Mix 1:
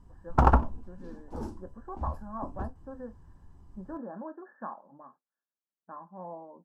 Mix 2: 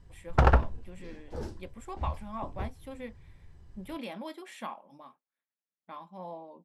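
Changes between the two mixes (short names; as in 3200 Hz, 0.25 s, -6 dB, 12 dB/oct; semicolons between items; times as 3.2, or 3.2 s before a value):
speech: remove brick-wall FIR low-pass 1800 Hz; background: add graphic EQ 125/250/500/1000/2000/4000 Hz +4/-8/+6/-9/+10/+7 dB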